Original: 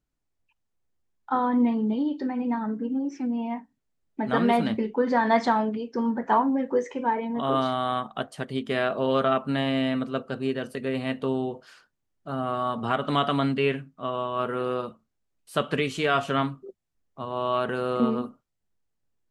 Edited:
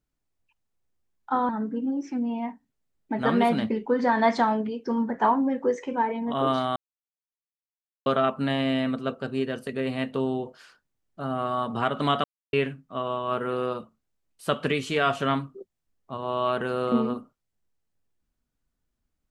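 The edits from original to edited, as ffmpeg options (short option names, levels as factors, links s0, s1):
-filter_complex "[0:a]asplit=6[s0][s1][s2][s3][s4][s5];[s0]atrim=end=1.492[s6];[s1]atrim=start=2.568:end=7.84,asetpts=PTS-STARTPTS,afade=t=out:st=5.268:d=0.004:c=hsin[s7];[s2]atrim=start=7.84:end=9.14,asetpts=PTS-STARTPTS,volume=0[s8];[s3]atrim=start=9.14:end=13.32,asetpts=PTS-STARTPTS,afade=t=in:d=0.004:c=hsin,afade=t=out:st=4.176:d=0.004:c=hsin[s9];[s4]atrim=start=13.32:end=13.61,asetpts=PTS-STARTPTS,volume=0[s10];[s5]atrim=start=13.61,asetpts=PTS-STARTPTS,afade=t=in:d=0.004:c=hsin[s11];[s7][s8][s9][s10][s11]concat=n=5:v=0:a=1[s12];[s6][s12]acrossfade=d=0.004:c1=hsin:c2=hsin"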